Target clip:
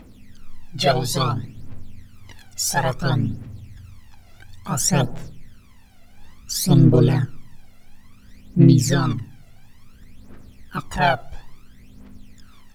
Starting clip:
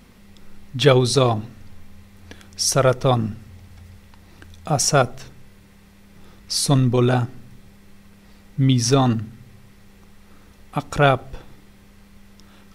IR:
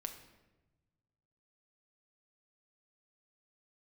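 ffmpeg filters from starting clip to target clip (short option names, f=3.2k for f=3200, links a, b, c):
-filter_complex "[0:a]asplit=2[a][b];[b]asetrate=55563,aresample=44100,atempo=0.793701,volume=-1dB[c];[a][c]amix=inputs=2:normalize=0,aphaser=in_gain=1:out_gain=1:delay=1.5:decay=0.74:speed=0.58:type=triangular,volume=-8dB"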